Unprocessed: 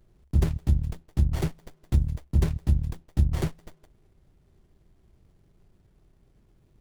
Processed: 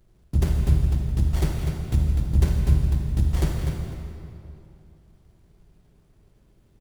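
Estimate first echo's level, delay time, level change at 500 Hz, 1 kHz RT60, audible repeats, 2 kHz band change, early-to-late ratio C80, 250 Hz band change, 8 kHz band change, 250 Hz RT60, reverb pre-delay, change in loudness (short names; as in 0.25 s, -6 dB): -8.0 dB, 0.248 s, +3.0 dB, 2.7 s, 1, +4.0 dB, 1.0 dB, +3.0 dB, +5.5 dB, 2.7 s, 36 ms, +3.5 dB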